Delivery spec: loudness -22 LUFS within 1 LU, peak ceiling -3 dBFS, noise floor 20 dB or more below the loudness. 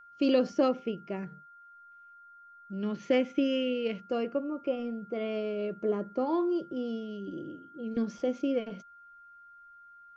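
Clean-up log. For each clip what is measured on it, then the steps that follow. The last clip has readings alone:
steady tone 1400 Hz; tone level -51 dBFS; loudness -31.5 LUFS; peak -14.5 dBFS; loudness target -22.0 LUFS
-> notch 1400 Hz, Q 30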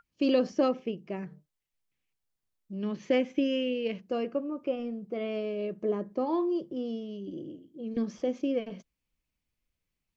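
steady tone none; loudness -31.5 LUFS; peak -14.5 dBFS; loudness target -22.0 LUFS
-> gain +9.5 dB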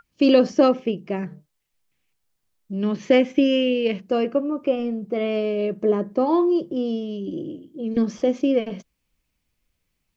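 loudness -22.0 LUFS; peak -5.0 dBFS; noise floor -76 dBFS

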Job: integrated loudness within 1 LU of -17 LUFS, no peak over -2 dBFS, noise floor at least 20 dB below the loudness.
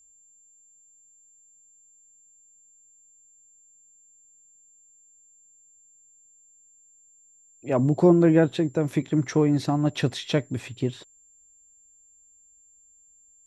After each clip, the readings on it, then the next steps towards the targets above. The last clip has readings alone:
steady tone 7300 Hz; tone level -55 dBFS; loudness -23.0 LUFS; peak -6.5 dBFS; loudness target -17.0 LUFS
-> notch 7300 Hz, Q 30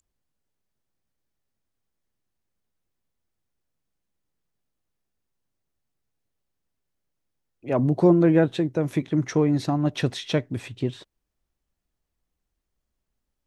steady tone none; loudness -23.0 LUFS; peak -6.5 dBFS; loudness target -17.0 LUFS
-> gain +6 dB; limiter -2 dBFS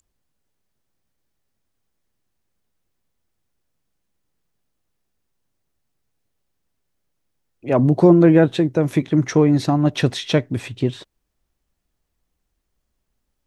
loudness -17.0 LUFS; peak -2.0 dBFS; noise floor -75 dBFS

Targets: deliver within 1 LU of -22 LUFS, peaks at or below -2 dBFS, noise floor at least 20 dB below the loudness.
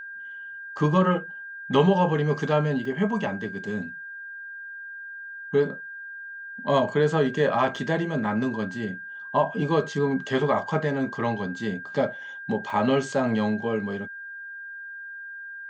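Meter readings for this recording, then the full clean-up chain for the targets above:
dropouts 3; longest dropout 2.2 ms; steady tone 1600 Hz; tone level -36 dBFS; loudness -25.5 LUFS; peak -8.5 dBFS; loudness target -22.0 LUFS
-> interpolate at 2.85/7.76/12.7, 2.2 ms; notch 1600 Hz, Q 30; gain +3.5 dB

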